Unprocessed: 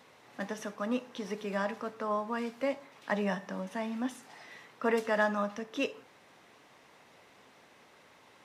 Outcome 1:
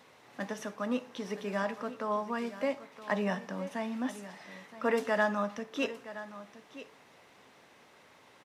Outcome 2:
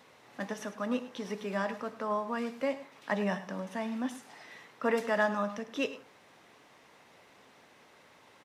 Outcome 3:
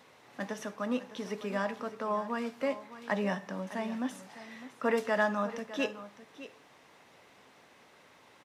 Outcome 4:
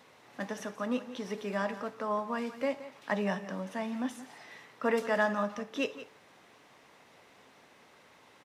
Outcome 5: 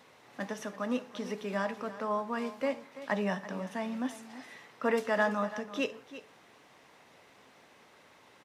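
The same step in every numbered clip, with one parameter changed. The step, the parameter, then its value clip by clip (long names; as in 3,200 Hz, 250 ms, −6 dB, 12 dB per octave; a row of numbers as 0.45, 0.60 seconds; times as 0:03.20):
single-tap delay, delay time: 970, 103, 607, 174, 336 milliseconds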